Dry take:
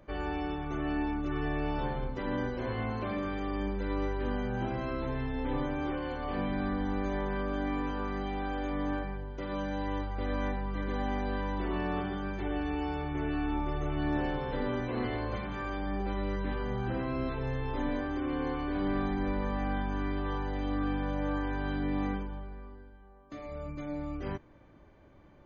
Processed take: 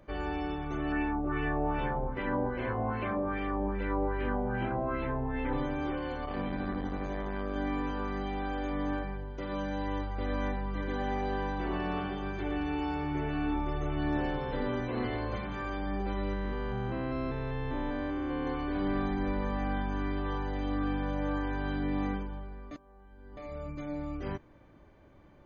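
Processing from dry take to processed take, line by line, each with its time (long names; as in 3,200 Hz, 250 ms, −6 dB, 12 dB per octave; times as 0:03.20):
0:00.92–0:05.53: auto-filter low-pass sine 2.5 Hz 730–2,600 Hz
0:06.25–0:07.56: saturating transformer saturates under 220 Hz
0:10.69–0:13.55: repeating echo 115 ms, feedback 57%, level −8.5 dB
0:16.33–0:18.47: spectrum averaged block by block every 200 ms
0:22.71–0:23.37: reverse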